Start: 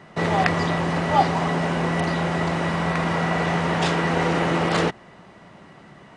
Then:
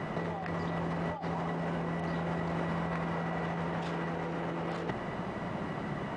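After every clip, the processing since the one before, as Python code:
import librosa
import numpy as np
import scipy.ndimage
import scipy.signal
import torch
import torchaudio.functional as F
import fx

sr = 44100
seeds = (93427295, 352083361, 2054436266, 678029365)

y = fx.high_shelf(x, sr, hz=2400.0, db=-10.5)
y = fx.over_compress(y, sr, threshold_db=-34.0, ratio=-1.0)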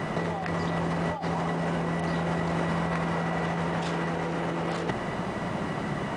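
y = fx.high_shelf(x, sr, hz=5900.0, db=11.5)
y = F.gain(torch.from_numpy(y), 5.5).numpy()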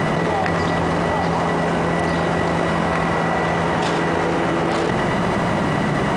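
y = x + 10.0 ** (-6.5 / 20.0) * np.pad(x, (int(98 * sr / 1000.0), 0))[:len(x)]
y = fx.env_flatten(y, sr, amount_pct=100)
y = F.gain(torch.from_numpy(y), 6.0).numpy()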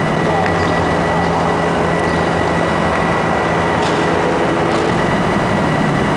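y = x + 10.0 ** (-6.5 / 20.0) * np.pad(x, (int(169 * sr / 1000.0), 0))[:len(x)]
y = F.gain(torch.from_numpy(y), 4.0).numpy()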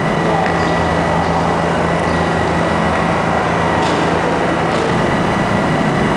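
y = fx.doubler(x, sr, ms=37.0, db=-5.0)
y = F.gain(torch.from_numpy(y), -1.0).numpy()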